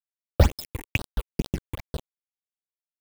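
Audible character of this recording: a quantiser's noise floor 6-bit, dither none; phasing stages 8, 2.2 Hz, lowest notch 170–2300 Hz; chopped level 4.9 Hz, depth 65%, duty 25%

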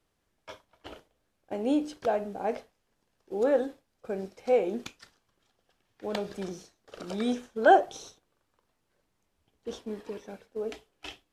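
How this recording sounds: noise floor -77 dBFS; spectral tilt -3.5 dB/oct

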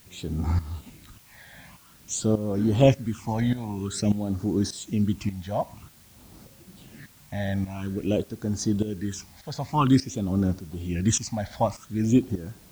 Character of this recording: phasing stages 8, 0.5 Hz, lowest notch 350–2800 Hz; tremolo saw up 1.7 Hz, depth 80%; a quantiser's noise floor 10-bit, dither triangular

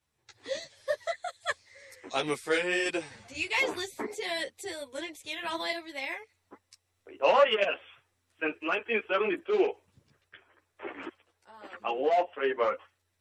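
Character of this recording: random-step tremolo; a shimmering, thickened sound

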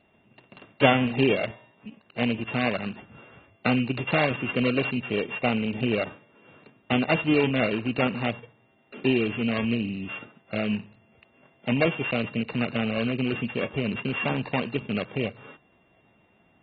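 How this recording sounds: a buzz of ramps at a fixed pitch in blocks of 16 samples; AAC

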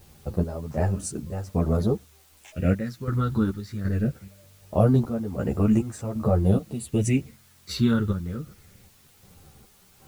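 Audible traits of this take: chopped level 1.3 Hz, depth 65%, duty 55%; phasing stages 6, 0.22 Hz, lowest notch 650–3700 Hz; a quantiser's noise floor 10-bit, dither triangular; a shimmering, thickened sound

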